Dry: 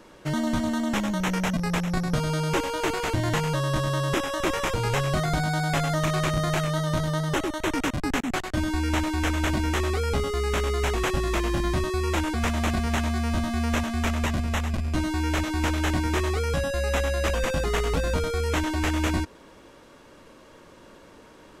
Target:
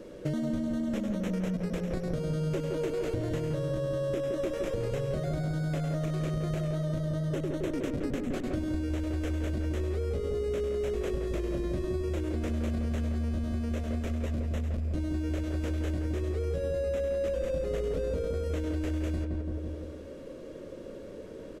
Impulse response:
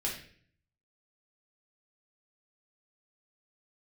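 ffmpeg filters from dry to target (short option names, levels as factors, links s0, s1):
-filter_complex "[0:a]lowshelf=f=680:t=q:w=3:g=7.5,asplit=2[s0][s1];[s1]adelay=168,lowpass=f=1300:p=1,volume=0.631,asplit=2[s2][s3];[s3]adelay=168,lowpass=f=1300:p=1,volume=0.49,asplit=2[s4][s5];[s5]adelay=168,lowpass=f=1300:p=1,volume=0.49,asplit=2[s6][s7];[s7]adelay=168,lowpass=f=1300:p=1,volume=0.49,asplit=2[s8][s9];[s9]adelay=168,lowpass=f=1300:p=1,volume=0.49,asplit=2[s10][s11];[s11]adelay=168,lowpass=f=1300:p=1,volume=0.49[s12];[s0][s2][s4][s6][s8][s10][s12]amix=inputs=7:normalize=0,acompressor=threshold=0.0562:ratio=6,volume=0.631"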